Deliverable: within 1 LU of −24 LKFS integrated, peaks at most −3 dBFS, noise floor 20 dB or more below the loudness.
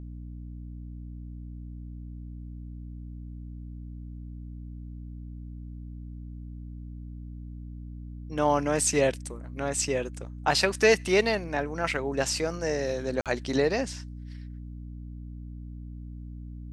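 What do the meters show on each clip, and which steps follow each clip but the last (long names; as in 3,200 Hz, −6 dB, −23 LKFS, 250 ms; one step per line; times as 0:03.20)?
number of dropouts 1; longest dropout 47 ms; mains hum 60 Hz; hum harmonics up to 300 Hz; level of the hum −37 dBFS; integrated loudness −27.0 LKFS; sample peak −8.0 dBFS; target loudness −24.0 LKFS
→ repair the gap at 0:13.21, 47 ms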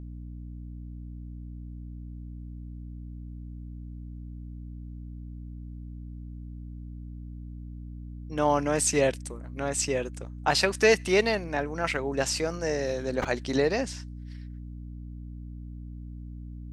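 number of dropouts 0; mains hum 60 Hz; hum harmonics up to 300 Hz; level of the hum −37 dBFS
→ mains-hum notches 60/120/180/240/300 Hz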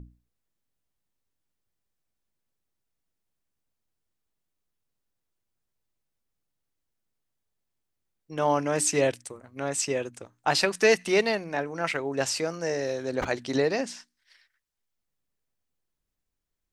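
mains hum none found; integrated loudness −26.5 LKFS; sample peak −8.0 dBFS; target loudness −24.0 LKFS
→ level +2.5 dB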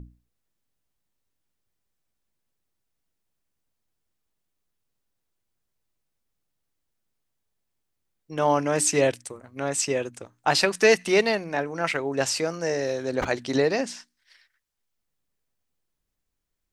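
integrated loudness −24.0 LKFS; sample peak −5.5 dBFS; background noise floor −80 dBFS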